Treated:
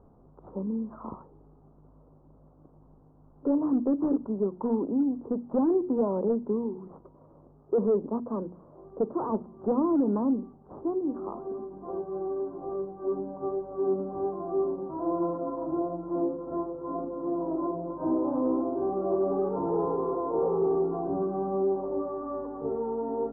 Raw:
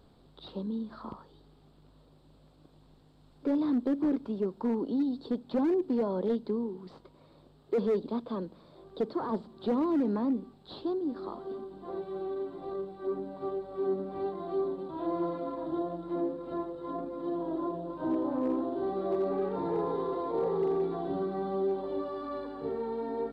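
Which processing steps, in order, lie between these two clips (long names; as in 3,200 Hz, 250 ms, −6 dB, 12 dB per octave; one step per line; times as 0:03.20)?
Butterworth low-pass 1,200 Hz 36 dB per octave
mains-hum notches 60/120/180/240/300/360 Hz
level +3.5 dB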